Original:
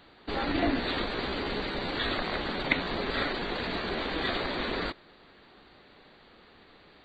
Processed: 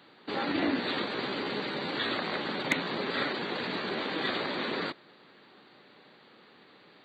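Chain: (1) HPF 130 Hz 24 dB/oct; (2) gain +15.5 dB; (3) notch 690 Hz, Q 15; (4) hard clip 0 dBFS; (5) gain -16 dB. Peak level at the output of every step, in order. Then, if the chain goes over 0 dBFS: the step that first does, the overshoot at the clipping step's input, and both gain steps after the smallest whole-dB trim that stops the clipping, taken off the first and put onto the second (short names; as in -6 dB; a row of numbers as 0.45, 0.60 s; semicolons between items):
-9.0, +6.5, +6.5, 0.0, -16.0 dBFS; step 2, 6.5 dB; step 2 +8.5 dB, step 5 -9 dB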